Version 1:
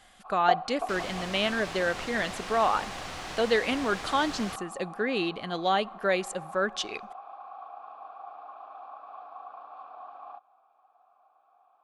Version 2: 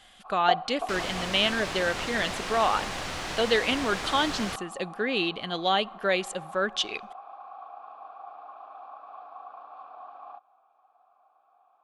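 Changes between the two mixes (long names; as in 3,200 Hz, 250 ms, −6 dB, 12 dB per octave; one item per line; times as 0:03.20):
speech: add parametric band 3,200 Hz +7 dB 0.74 octaves
second sound +5.0 dB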